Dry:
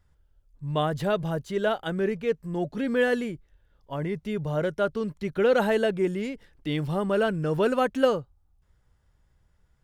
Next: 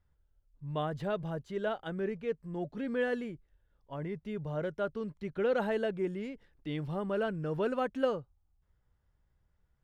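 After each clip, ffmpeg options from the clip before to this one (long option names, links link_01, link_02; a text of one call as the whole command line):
ffmpeg -i in.wav -af "lowpass=frequency=3100:poles=1,volume=-8dB" out.wav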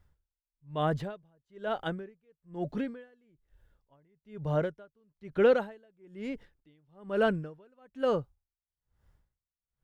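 ffmpeg -i in.wav -af "aeval=exprs='val(0)*pow(10,-39*(0.5-0.5*cos(2*PI*1.1*n/s))/20)':channel_layout=same,volume=8dB" out.wav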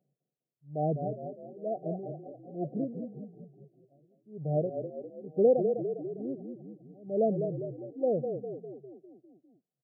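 ffmpeg -i in.wav -filter_complex "[0:a]asplit=8[link_01][link_02][link_03][link_04][link_05][link_06][link_07][link_08];[link_02]adelay=201,afreqshift=-31,volume=-6.5dB[link_09];[link_03]adelay=402,afreqshift=-62,volume=-11.4dB[link_10];[link_04]adelay=603,afreqshift=-93,volume=-16.3dB[link_11];[link_05]adelay=804,afreqshift=-124,volume=-21.1dB[link_12];[link_06]adelay=1005,afreqshift=-155,volume=-26dB[link_13];[link_07]adelay=1206,afreqshift=-186,volume=-30.9dB[link_14];[link_08]adelay=1407,afreqshift=-217,volume=-35.8dB[link_15];[link_01][link_09][link_10][link_11][link_12][link_13][link_14][link_15]amix=inputs=8:normalize=0,afftfilt=real='re*between(b*sr/4096,120,780)':imag='im*between(b*sr/4096,120,780)':win_size=4096:overlap=0.75" out.wav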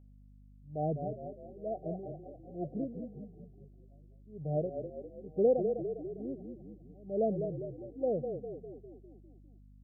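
ffmpeg -i in.wav -af "aeval=exprs='val(0)+0.00251*(sin(2*PI*50*n/s)+sin(2*PI*2*50*n/s)/2+sin(2*PI*3*50*n/s)/3+sin(2*PI*4*50*n/s)/4+sin(2*PI*5*50*n/s)/5)':channel_layout=same,volume=-3.5dB" out.wav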